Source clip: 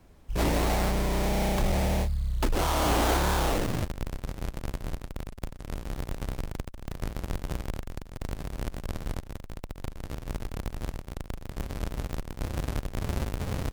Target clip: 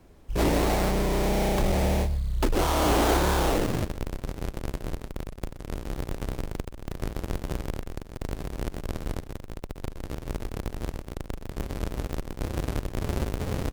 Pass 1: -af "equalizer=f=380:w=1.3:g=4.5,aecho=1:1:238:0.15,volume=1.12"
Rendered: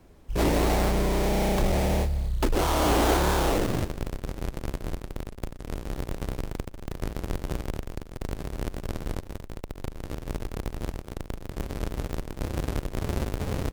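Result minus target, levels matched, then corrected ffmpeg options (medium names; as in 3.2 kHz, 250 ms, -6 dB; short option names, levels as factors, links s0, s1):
echo 111 ms late
-af "equalizer=f=380:w=1.3:g=4.5,aecho=1:1:127:0.15,volume=1.12"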